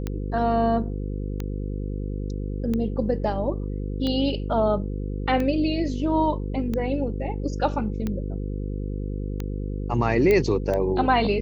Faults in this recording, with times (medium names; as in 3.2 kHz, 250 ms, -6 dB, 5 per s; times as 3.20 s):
buzz 50 Hz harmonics 10 -29 dBFS
tick 45 rpm -16 dBFS
10.31 s: pop -10 dBFS